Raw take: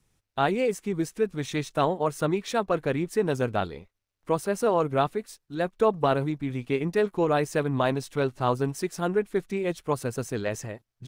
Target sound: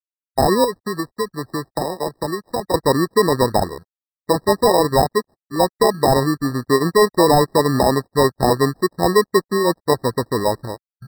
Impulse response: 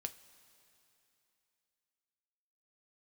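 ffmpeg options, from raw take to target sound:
-filter_complex "[0:a]equalizer=frequency=3300:width_type=o:width=0.42:gain=-11,bandreject=frequency=7800:width=11,aeval=exprs='sgn(val(0))*max(abs(val(0))-0.00251,0)':channel_layout=same,afwtdn=0.0251,bass=frequency=250:gain=-6,treble=frequency=4000:gain=-10,acrusher=samples=30:mix=1:aa=0.000001,asettb=1/sr,asplit=3[link_01][link_02][link_03];[link_01]atrim=end=0.644[link_04];[link_02]atrim=start=0.64:end=2.74,asetpts=PTS-STARTPTS,afade=type=in:duration=0.004:curve=qsin,afade=type=out:start_time=2.096:duration=0.004:curve=qsin,acrossover=split=99|610|5100[link_05][link_06][link_07][link_08];[link_05]acompressor=threshold=-58dB:ratio=4[link_09];[link_06]acompressor=threshold=-38dB:ratio=4[link_10];[link_07]acompressor=threshold=-39dB:ratio=4[link_11];[link_08]acompressor=threshold=-45dB:ratio=4[link_12];[link_09][link_10][link_11][link_12]amix=inputs=4:normalize=0[link_13];[link_03]atrim=start=2.736[link_14];[link_04][link_13]acrossfade=duration=0.004:curve1=hsin:curve2=qsin[link_15];[link_15][link_14]acrossfade=duration=0.004:curve1=qsin:curve2=hsin,alimiter=level_in=17.5dB:limit=-1dB:release=50:level=0:latency=1,afftfilt=real='re*eq(mod(floor(b*sr/1024/1900),2),0)':imag='im*eq(mod(floor(b*sr/1024/1900),2),0)':win_size=1024:overlap=0.75,volume=-4.5dB"

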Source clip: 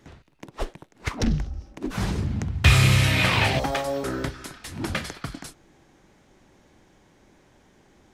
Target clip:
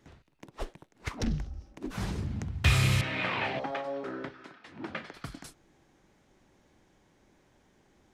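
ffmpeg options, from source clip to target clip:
ffmpeg -i in.wav -filter_complex "[0:a]asettb=1/sr,asplit=3[link_01][link_02][link_03];[link_01]atrim=end=3.014[link_04];[link_02]atrim=start=3.01:end=5.14,asetpts=PTS-STARTPTS,afade=type=in:duration=0.004:curve=qsin,afade=type=out:start_time=2.126:duration=0.004:curve=qsin,highpass=220,lowpass=2600[link_05];[link_03]atrim=start=5.136[link_06];[link_04][link_05]acrossfade=duration=0.004:curve1=hsin:curve2=qsin[link_07];[link_07][link_06]acrossfade=duration=0.004:curve1=qsin:curve2=hsin,volume=-7.5dB" out.wav

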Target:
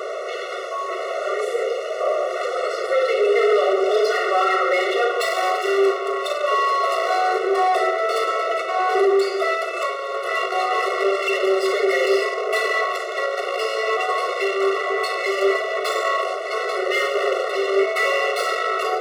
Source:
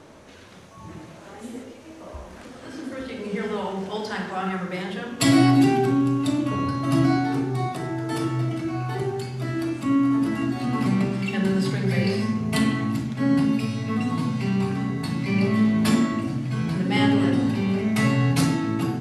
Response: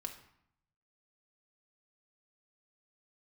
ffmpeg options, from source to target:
-filter_complex "[0:a]asplit=2[link_01][link_02];[link_02]highpass=frequency=720:poles=1,volume=35dB,asoftclip=type=tanh:threshold=-6dB[link_03];[link_01][link_03]amix=inputs=2:normalize=0,lowpass=frequency=1300:poles=1,volume=-6dB,afftfilt=real='re*eq(mod(floor(b*sr/1024/370),2),1)':imag='im*eq(mod(floor(b*sr/1024/370),2),1)':win_size=1024:overlap=0.75"

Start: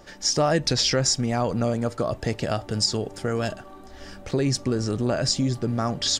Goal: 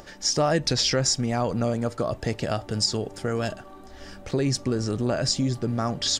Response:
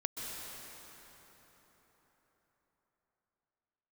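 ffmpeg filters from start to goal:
-af "acompressor=mode=upward:threshold=-41dB:ratio=2.5,volume=-1dB"

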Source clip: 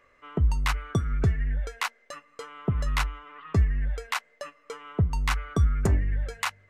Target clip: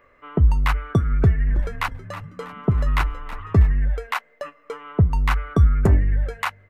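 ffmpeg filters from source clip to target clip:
ffmpeg -i in.wav -filter_complex "[0:a]equalizer=frequency=6700:width=0.51:gain=-13,asplit=3[link_01][link_02][link_03];[link_01]afade=type=out:start_time=1.47:duration=0.02[link_04];[link_02]asplit=5[link_05][link_06][link_07][link_08][link_09];[link_06]adelay=322,afreqshift=-76,volume=-14dB[link_10];[link_07]adelay=644,afreqshift=-152,volume=-20.6dB[link_11];[link_08]adelay=966,afreqshift=-228,volume=-27.1dB[link_12];[link_09]adelay=1288,afreqshift=-304,volume=-33.7dB[link_13];[link_05][link_10][link_11][link_12][link_13]amix=inputs=5:normalize=0,afade=type=in:start_time=1.47:duration=0.02,afade=type=out:start_time=3.74:duration=0.02[link_14];[link_03]afade=type=in:start_time=3.74:duration=0.02[link_15];[link_04][link_14][link_15]amix=inputs=3:normalize=0,volume=7dB" out.wav

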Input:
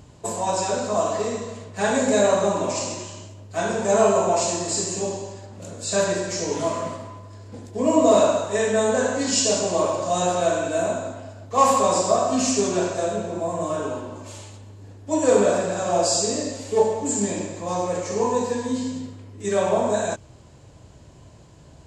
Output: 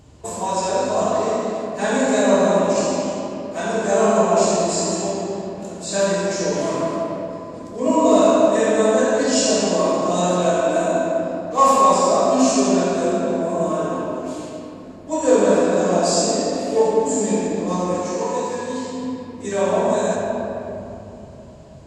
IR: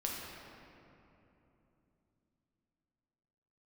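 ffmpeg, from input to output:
-filter_complex "[0:a]asettb=1/sr,asplit=3[link_01][link_02][link_03];[link_01]atrim=end=17.934[link_04];[link_02]atrim=start=17.93:end=19.01,asetpts=PTS-STARTPTS,afade=type=in:duration=0.004:curve=qsin,afade=type=out:start_time=1.076:duration=0.004:curve=qsin,lowshelf=frequency=490:gain=-10.5[link_05];[link_03]atrim=start=19.006[link_06];[link_04][link_05]acrossfade=duration=0.004:curve1=hsin:curve2=qsin[link_07];[link_07][link_06]acrossfade=duration=0.004:curve1=qsin:curve2=hsin[link_08];[1:a]atrim=start_sample=2205,asetrate=43218,aresample=44100[link_09];[link_08][link_09]afir=irnorm=-1:irlink=0"

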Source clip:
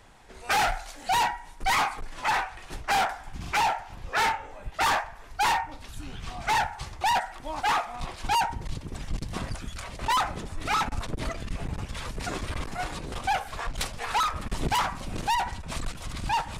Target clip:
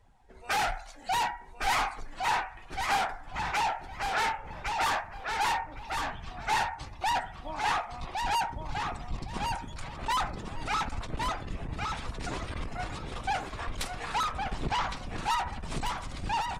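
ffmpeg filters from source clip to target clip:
ffmpeg -i in.wav -filter_complex "[0:a]aecho=1:1:1111|2222|3333:0.596|0.125|0.0263,asettb=1/sr,asplit=3[link_01][link_02][link_03];[link_01]atrim=end=14.364[link_04];[link_02]atrim=start=14.36:end=15.16,asetpts=PTS-STARTPTS,afade=type=in:duration=0.004:curve=qsin,afade=type=out:start_time=0.796:duration=0.004:curve=qsin,acrossover=split=6200[link_05][link_06];[link_06]acompressor=threshold=-48dB:ratio=4:attack=1:release=60[link_07];[link_05][link_07]amix=inputs=2:normalize=0[link_08];[link_03]atrim=start=15.156[link_09];[link_04][link_08]acrossfade=duration=0.004:curve1=hsin:curve2=qsin[link_10];[link_10][link_09]acrossfade=duration=0.004:curve1=qsin:curve2=hsin,afftdn=noise_reduction=13:noise_floor=-49,volume=-4.5dB" out.wav

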